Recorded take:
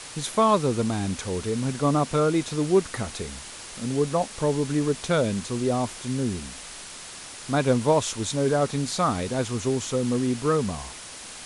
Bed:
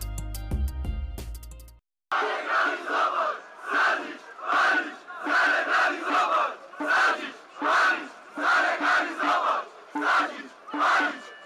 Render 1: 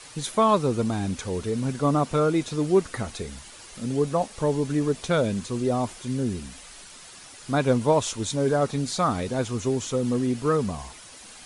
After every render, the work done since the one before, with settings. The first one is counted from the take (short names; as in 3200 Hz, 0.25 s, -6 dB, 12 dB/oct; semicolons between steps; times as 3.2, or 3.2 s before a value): denoiser 8 dB, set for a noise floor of -41 dBFS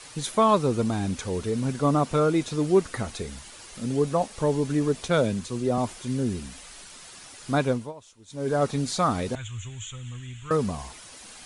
5.08–5.78 three-band expander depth 40%; 7.58–8.62 dip -23.5 dB, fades 0.35 s; 9.35–10.51 EQ curve 110 Hz 0 dB, 190 Hz -22 dB, 320 Hz -26 dB, 480 Hz -29 dB, 1000 Hz -15 dB, 1600 Hz -6 dB, 3400 Hz +1 dB, 4900 Hz -28 dB, 7100 Hz 0 dB, 11000 Hz -28 dB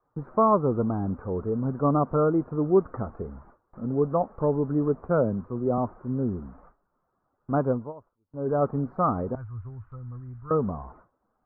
elliptic low-pass 1300 Hz, stop band 60 dB; gate with hold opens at -41 dBFS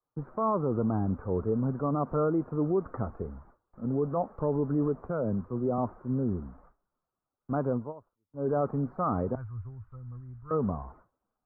limiter -20.5 dBFS, peak gain reduction 10 dB; three-band expander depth 40%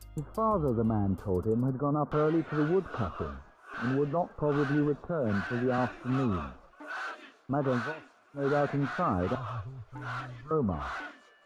add bed -16 dB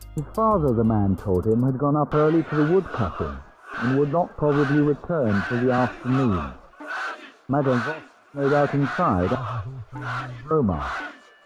gain +8 dB